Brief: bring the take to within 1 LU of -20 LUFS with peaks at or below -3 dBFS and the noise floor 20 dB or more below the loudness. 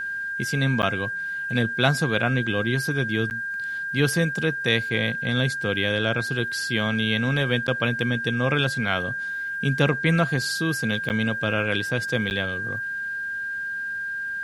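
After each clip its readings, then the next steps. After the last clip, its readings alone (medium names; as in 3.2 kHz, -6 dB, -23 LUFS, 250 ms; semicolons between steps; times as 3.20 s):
dropouts 5; longest dropout 9.6 ms; steady tone 1.6 kHz; tone level -27 dBFS; loudness -24.0 LUFS; peak level -3.5 dBFS; loudness target -20.0 LUFS
-> interpolate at 0.82/3.30/7.67/11.09/12.30 s, 9.6 ms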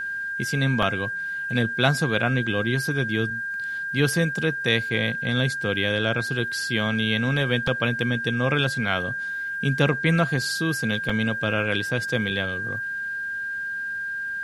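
dropouts 0; steady tone 1.6 kHz; tone level -27 dBFS
-> band-stop 1.6 kHz, Q 30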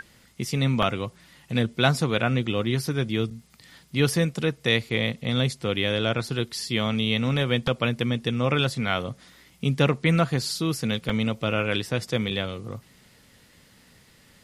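steady tone not found; loudness -25.0 LUFS; peak level -4.5 dBFS; loudness target -20.0 LUFS
-> trim +5 dB; peak limiter -3 dBFS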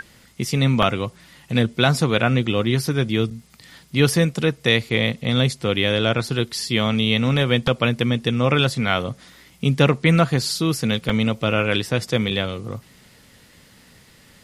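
loudness -20.5 LUFS; peak level -3.0 dBFS; noise floor -52 dBFS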